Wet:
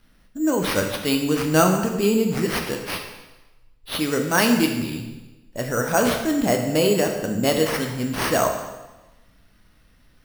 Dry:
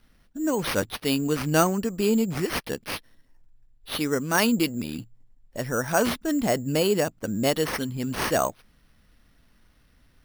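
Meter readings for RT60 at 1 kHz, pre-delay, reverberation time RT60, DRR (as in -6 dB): 1.1 s, 5 ms, 1.1 s, 2.5 dB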